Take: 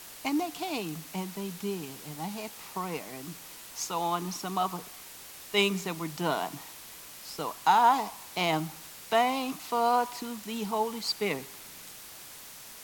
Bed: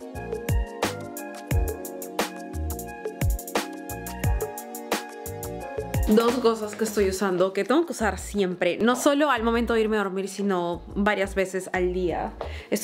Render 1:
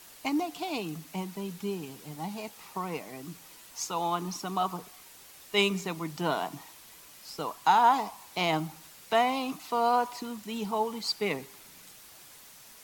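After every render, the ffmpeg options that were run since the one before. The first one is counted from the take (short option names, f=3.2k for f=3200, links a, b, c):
-af "afftdn=nr=6:nf=-47"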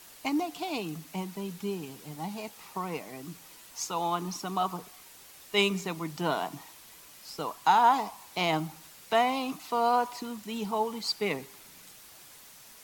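-af anull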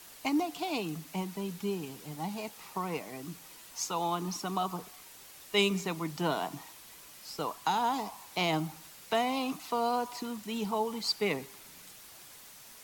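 -filter_complex "[0:a]acrossover=split=490|3000[a][b][c];[b]acompressor=threshold=-30dB:ratio=6[d];[a][d][c]amix=inputs=3:normalize=0"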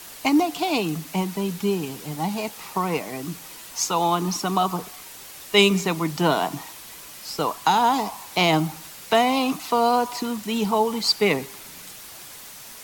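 -af "volume=10.5dB"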